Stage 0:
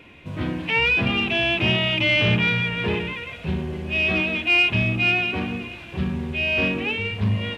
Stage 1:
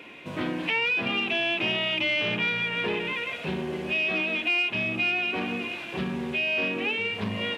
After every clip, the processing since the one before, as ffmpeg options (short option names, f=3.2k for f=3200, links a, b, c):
-af "highpass=260,acompressor=threshold=-30dB:ratio=3,volume=3.5dB"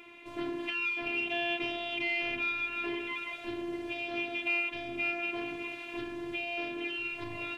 -af "afftfilt=real='hypot(re,im)*cos(PI*b)':imag='0':win_size=512:overlap=0.75,equalizer=f=130:w=2:g=14.5,volume=-4dB"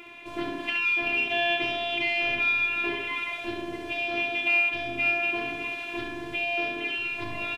-af "aecho=1:1:25|68:0.211|0.473,volume=6dB"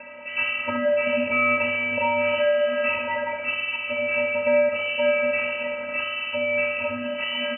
-af "acrusher=samples=5:mix=1:aa=0.000001,lowpass=f=2.6k:t=q:w=0.5098,lowpass=f=2.6k:t=q:w=0.6013,lowpass=f=2.6k:t=q:w=0.9,lowpass=f=2.6k:t=q:w=2.563,afreqshift=-3000,volume=6.5dB"